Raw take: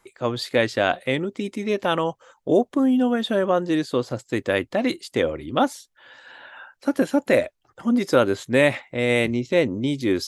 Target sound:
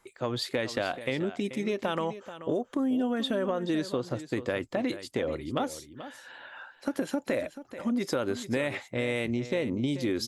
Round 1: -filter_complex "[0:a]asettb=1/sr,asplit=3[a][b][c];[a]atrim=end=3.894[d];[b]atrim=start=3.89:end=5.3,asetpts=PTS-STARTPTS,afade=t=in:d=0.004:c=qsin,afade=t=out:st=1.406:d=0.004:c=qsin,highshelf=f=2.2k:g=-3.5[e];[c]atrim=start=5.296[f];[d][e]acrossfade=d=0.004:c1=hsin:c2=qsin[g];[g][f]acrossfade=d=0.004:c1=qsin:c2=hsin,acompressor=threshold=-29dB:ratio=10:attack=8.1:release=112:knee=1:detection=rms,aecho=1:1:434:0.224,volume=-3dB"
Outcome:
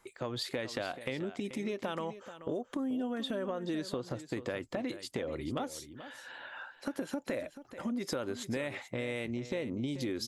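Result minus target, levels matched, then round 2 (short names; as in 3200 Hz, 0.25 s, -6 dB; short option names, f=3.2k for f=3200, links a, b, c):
compressor: peak gain reduction +7 dB
-filter_complex "[0:a]asettb=1/sr,asplit=3[a][b][c];[a]atrim=end=3.894[d];[b]atrim=start=3.89:end=5.3,asetpts=PTS-STARTPTS,afade=t=in:d=0.004:c=qsin,afade=t=out:st=1.406:d=0.004:c=qsin,highshelf=f=2.2k:g=-3.5[e];[c]atrim=start=5.296[f];[d][e]acrossfade=d=0.004:c1=hsin:c2=qsin[g];[g][f]acrossfade=d=0.004:c1=qsin:c2=hsin,acompressor=threshold=-21.5dB:ratio=10:attack=8.1:release=112:knee=1:detection=rms,aecho=1:1:434:0.224,volume=-3dB"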